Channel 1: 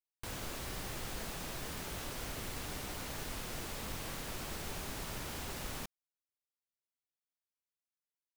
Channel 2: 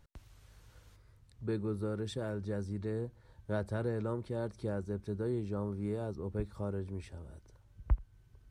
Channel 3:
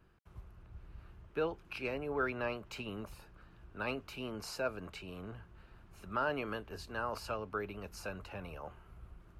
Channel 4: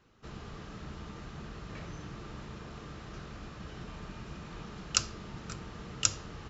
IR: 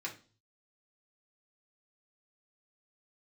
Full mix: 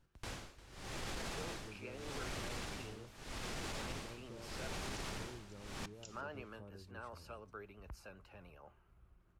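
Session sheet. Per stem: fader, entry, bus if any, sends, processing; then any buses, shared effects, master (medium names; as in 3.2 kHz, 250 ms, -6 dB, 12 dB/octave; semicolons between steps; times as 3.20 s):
+3.0 dB, 0.00 s, send -13 dB, echo send -17 dB, tremolo 0.82 Hz, depth 97%; low-pass 7.6 kHz 12 dB/octave
-9.0 dB, 0.00 s, no send, no echo send, compression 2.5:1, threshold -45 dBFS, peak gain reduction 15.5 dB
-13.0 dB, 0.00 s, send -14.5 dB, no echo send, vibrato 9.7 Hz 52 cents
-20.0 dB, 0.00 s, no send, no echo send, Chebyshev high-pass 2.8 kHz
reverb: on, RT60 0.40 s, pre-delay 3 ms
echo: feedback delay 351 ms, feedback 31%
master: peak limiter -33.5 dBFS, peak gain reduction 10.5 dB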